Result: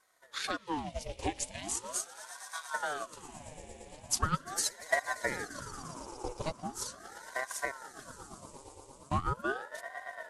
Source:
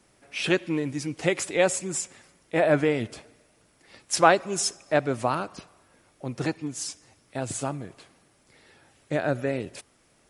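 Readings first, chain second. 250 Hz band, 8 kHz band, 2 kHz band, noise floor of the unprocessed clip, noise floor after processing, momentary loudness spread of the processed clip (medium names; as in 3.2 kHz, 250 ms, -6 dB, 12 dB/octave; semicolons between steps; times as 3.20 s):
-13.5 dB, -4.5 dB, -6.5 dB, -63 dBFS, -56 dBFS, 17 LU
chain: peak limiter -14.5 dBFS, peak gain reduction 11.5 dB; peaking EQ 560 Hz +3.5 dB 0.23 oct; static phaser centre 400 Hz, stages 6; spectral selection erased 1.39–2.75 s, 320–1900 Hz; wow and flutter 42 cents; echo with a slow build-up 115 ms, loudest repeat 5, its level -16 dB; transient shaper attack +6 dB, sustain -6 dB; ring modulator with a swept carrier 770 Hz, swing 70%, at 0.4 Hz; trim -4 dB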